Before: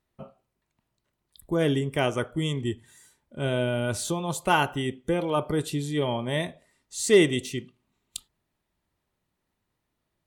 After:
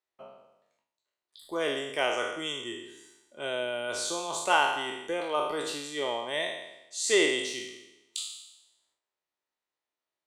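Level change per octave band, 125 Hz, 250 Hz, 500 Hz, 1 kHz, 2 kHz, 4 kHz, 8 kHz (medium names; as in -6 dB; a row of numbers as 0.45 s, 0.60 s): -24.0 dB, -10.5 dB, -4.5 dB, -0.5 dB, +0.5 dB, +2.0 dB, +0.5 dB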